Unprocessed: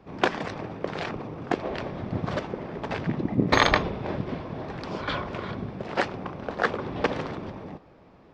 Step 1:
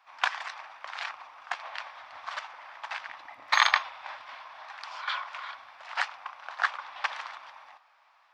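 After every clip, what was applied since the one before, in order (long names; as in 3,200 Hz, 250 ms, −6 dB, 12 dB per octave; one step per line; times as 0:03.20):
inverse Chebyshev high-pass filter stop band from 450 Hz, stop band 40 dB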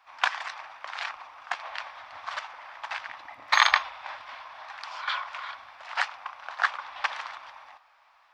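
low-shelf EQ 110 Hz +9.5 dB
level +2 dB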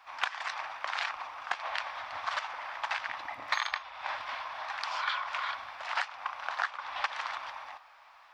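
downward compressor 8 to 1, threshold −33 dBFS, peak gain reduction 19.5 dB
level +4.5 dB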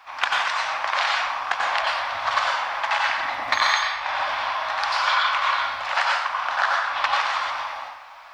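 dense smooth reverb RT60 0.74 s, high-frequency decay 0.9×, pre-delay 80 ms, DRR −2.5 dB
level +8 dB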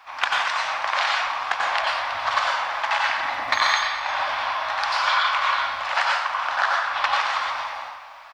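single-tap delay 323 ms −15.5 dB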